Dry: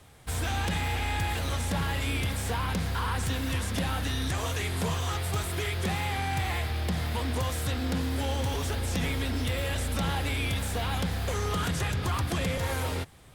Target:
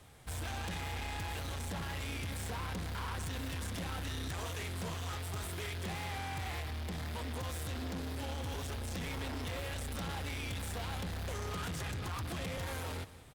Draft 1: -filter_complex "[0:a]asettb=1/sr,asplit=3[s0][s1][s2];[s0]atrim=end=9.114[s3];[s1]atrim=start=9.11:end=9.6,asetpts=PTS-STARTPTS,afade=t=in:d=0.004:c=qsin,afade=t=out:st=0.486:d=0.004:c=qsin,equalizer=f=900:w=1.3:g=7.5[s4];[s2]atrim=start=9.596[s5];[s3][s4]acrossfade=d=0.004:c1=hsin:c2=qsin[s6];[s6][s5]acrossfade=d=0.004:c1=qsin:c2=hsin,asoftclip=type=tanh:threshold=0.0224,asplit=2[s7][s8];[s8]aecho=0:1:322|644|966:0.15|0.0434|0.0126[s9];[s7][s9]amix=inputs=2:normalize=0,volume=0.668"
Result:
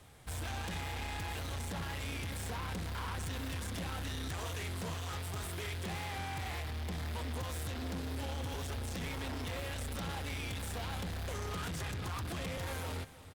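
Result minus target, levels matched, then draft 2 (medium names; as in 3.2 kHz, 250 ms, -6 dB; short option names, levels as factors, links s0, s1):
echo 137 ms late
-filter_complex "[0:a]asettb=1/sr,asplit=3[s0][s1][s2];[s0]atrim=end=9.114[s3];[s1]atrim=start=9.11:end=9.6,asetpts=PTS-STARTPTS,afade=t=in:d=0.004:c=qsin,afade=t=out:st=0.486:d=0.004:c=qsin,equalizer=f=900:w=1.3:g=7.5[s4];[s2]atrim=start=9.596[s5];[s3][s4]acrossfade=d=0.004:c1=hsin:c2=qsin[s6];[s6][s5]acrossfade=d=0.004:c1=qsin:c2=hsin,asoftclip=type=tanh:threshold=0.0224,asplit=2[s7][s8];[s8]aecho=0:1:185|370|555:0.15|0.0434|0.0126[s9];[s7][s9]amix=inputs=2:normalize=0,volume=0.668"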